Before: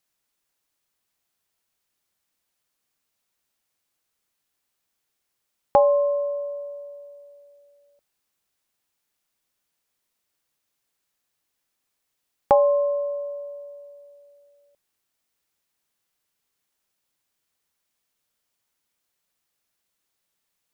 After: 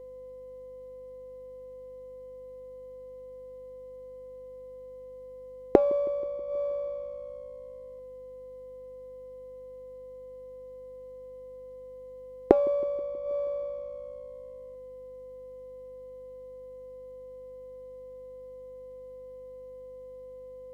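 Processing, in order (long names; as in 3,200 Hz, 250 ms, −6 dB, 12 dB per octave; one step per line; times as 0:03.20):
treble cut that deepens with the level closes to 300 Hz, closed at −27 dBFS
steady tone 510 Hz −48 dBFS
delay with a low-pass on its return 160 ms, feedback 61%, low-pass 460 Hz, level −19.5 dB
mains hum 50 Hz, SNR 21 dB
parametric band 380 Hz +12 dB 1.1 octaves
windowed peak hold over 5 samples
level −1.5 dB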